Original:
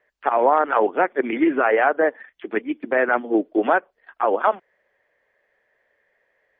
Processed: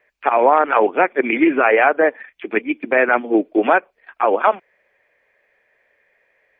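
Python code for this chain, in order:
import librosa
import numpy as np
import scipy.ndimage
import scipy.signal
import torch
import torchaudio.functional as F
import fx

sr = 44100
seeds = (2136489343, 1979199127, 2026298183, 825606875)

y = fx.peak_eq(x, sr, hz=2400.0, db=11.5, octaves=0.27)
y = y * librosa.db_to_amplitude(3.5)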